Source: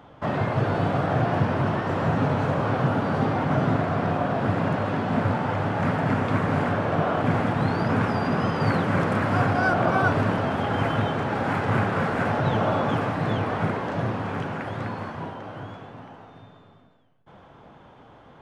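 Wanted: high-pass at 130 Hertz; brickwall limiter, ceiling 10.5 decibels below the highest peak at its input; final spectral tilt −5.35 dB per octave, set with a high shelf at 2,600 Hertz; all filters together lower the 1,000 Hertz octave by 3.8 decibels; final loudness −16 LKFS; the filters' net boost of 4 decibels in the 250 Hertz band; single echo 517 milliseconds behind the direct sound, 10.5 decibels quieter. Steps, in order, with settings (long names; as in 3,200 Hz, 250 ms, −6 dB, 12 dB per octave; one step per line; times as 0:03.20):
high-pass filter 130 Hz
parametric band 250 Hz +6 dB
parametric band 1,000 Hz −4.5 dB
high-shelf EQ 2,600 Hz −7.5 dB
brickwall limiter −19 dBFS
single-tap delay 517 ms −10.5 dB
level +11.5 dB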